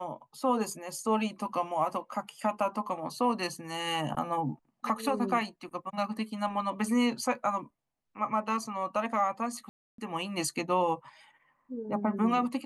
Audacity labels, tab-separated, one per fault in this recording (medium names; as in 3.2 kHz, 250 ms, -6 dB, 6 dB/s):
9.690000	9.980000	dropout 293 ms